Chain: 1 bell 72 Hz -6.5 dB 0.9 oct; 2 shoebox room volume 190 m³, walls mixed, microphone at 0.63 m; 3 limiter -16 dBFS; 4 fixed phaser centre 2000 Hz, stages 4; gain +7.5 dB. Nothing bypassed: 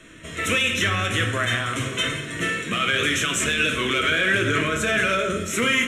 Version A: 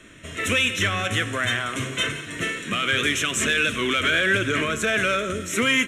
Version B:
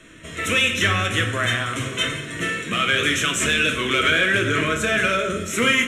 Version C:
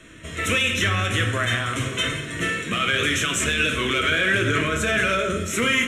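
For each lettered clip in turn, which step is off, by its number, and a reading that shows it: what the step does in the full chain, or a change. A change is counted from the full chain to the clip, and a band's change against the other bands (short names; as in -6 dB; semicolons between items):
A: 2, 125 Hz band -2.0 dB; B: 3, crest factor change +1.5 dB; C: 1, 125 Hz band +2.5 dB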